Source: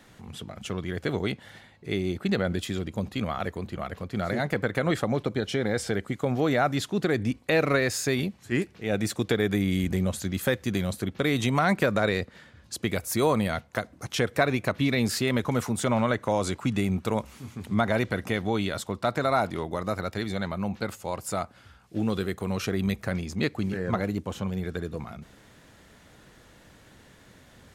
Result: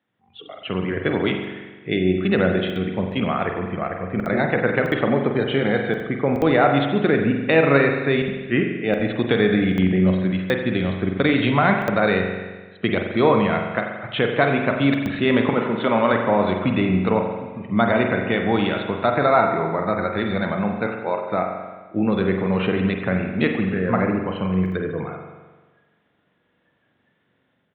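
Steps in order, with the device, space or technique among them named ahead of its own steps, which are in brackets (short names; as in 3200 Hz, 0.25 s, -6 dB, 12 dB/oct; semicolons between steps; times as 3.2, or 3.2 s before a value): 15.49–16.13 HPF 180 Hz 12 dB/oct; spectral noise reduction 21 dB; call with lost packets (HPF 130 Hz 12 dB/oct; downsampling 8000 Hz; AGC gain up to 8 dB; packet loss packets of 60 ms random); spring tank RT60 1.3 s, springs 43 ms, chirp 55 ms, DRR 3 dB; gain -1 dB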